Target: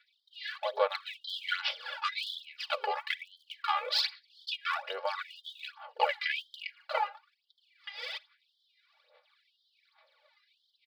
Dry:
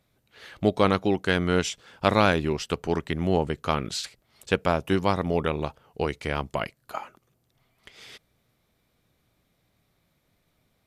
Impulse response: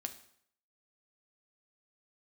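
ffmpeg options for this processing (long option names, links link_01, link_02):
-filter_complex "[0:a]aeval=exprs='if(lt(val(0),0),0.447*val(0),val(0))':channel_layout=same,asplit=2[link_01][link_02];[link_02]equalizer=frequency=430:width_type=o:width=0.29:gain=8.5[link_03];[1:a]atrim=start_sample=2205,afade=type=out:start_time=0.25:duration=0.01,atrim=end_sample=11466,adelay=8[link_04];[link_03][link_04]afir=irnorm=-1:irlink=0,volume=-10dB[link_05];[link_01][link_05]amix=inputs=2:normalize=0,aresample=11025,aresample=44100,asettb=1/sr,asplit=3[link_06][link_07][link_08];[link_06]atrim=end=1.374[link_09];[link_07]atrim=start=1.37:end=2.1,asetpts=PTS-STARTPTS,afade=type=in:duration=0.004:curve=qsin,afade=type=out:start_time=0.726:duration=0.004:curve=qsin,acontrast=29[link_10];[link_08]atrim=start=2.096[link_11];[link_09][link_10]acrossfade=duration=0.004:curve1=hsin:curve2=qsin[link_12];[link_12][link_11]acrossfade=duration=0.004:curve1=qsin:curve2=hsin,aphaser=in_gain=1:out_gain=1:delay=2.5:decay=0.72:speed=1.2:type=sinusoidal,acompressor=threshold=-27dB:ratio=2.5,alimiter=limit=-17.5dB:level=0:latency=1:release=150,aecho=1:1:3.5:1,afftfilt=real='re*gte(b*sr/1024,410*pow(3100/410,0.5+0.5*sin(2*PI*0.96*pts/sr)))':imag='im*gte(b*sr/1024,410*pow(3100/410,0.5+0.5*sin(2*PI*0.96*pts/sr)))':win_size=1024:overlap=0.75,volume=3.5dB"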